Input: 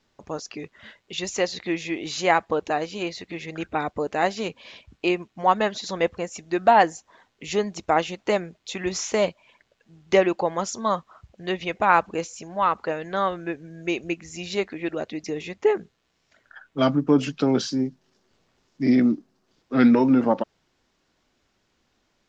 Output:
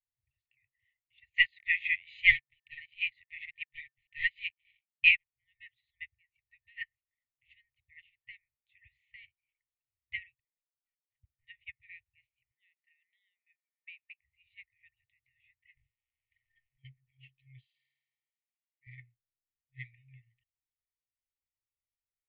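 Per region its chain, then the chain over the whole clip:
1.34–5.26 HPF 740 Hz + sample leveller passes 3
10.35–11.45 sample leveller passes 2 + flipped gate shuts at -20 dBFS, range -33 dB + air absorption 240 m
12.51–14.21 HPF 570 Hz + careless resampling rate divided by 4×, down none, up filtered
15.74–16.85 negative-ratio compressor -36 dBFS + sample leveller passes 2
17.64–18.87 HPF 1300 Hz + flutter echo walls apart 9 m, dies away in 1.4 s
whole clip: inverse Chebyshev low-pass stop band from 5100 Hz, stop band 40 dB; FFT band-reject 130–1800 Hz; upward expander 2.5:1, over -42 dBFS; gain +4 dB

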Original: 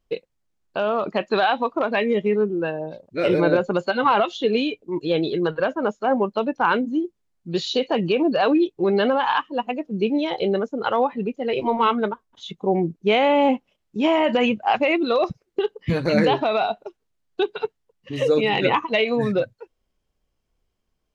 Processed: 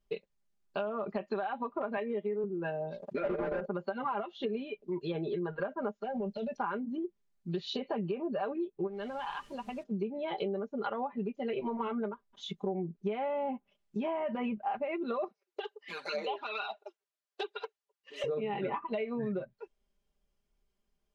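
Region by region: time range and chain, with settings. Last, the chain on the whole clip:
1.97–2.44 HPF 260 Hz + high shelf 4000 Hz +6.5 dB
3.02–3.67 level quantiser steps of 19 dB + overdrive pedal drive 31 dB, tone 1400 Hz, clips at -7.5 dBFS
6.03–6.58 compressor 2:1, threshold -24 dBFS + fixed phaser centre 300 Hz, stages 6 + transient shaper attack -8 dB, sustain +6 dB
8.86–9.82 compressor 16:1, threshold -27 dBFS + added noise pink -55 dBFS
15.28–18.24 envelope flanger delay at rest 7.2 ms, full sweep at -14 dBFS + Bessel high-pass 600 Hz, order 4
whole clip: treble ducked by the level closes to 1600 Hz, closed at -18 dBFS; comb 5 ms, depth 76%; compressor, threshold -24 dBFS; gain -7.5 dB

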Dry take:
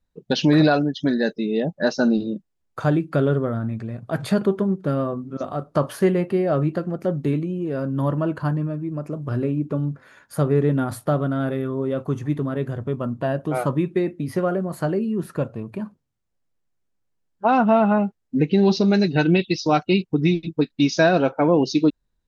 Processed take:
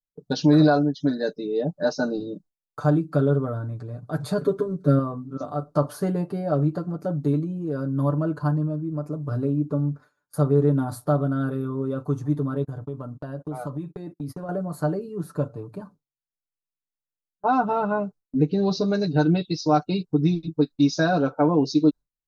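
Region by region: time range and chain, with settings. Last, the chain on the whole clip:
4.38–4.99 bell 830 Hz -13 dB 0.25 oct + comb 7.3 ms, depth 98%
12.64–14.49 gate -35 dBFS, range -30 dB + compressor 4:1, threshold -27 dBFS
whole clip: gate with hold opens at -33 dBFS; band shelf 2400 Hz -11.5 dB 1.1 oct; comb 6.8 ms, depth 80%; gain -5 dB

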